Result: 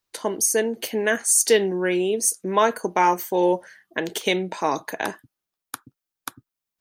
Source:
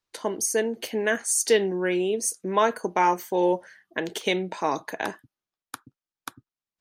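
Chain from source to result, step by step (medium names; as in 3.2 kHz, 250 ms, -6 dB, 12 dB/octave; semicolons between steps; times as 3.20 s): treble shelf 10 kHz +9 dB; trim +2.5 dB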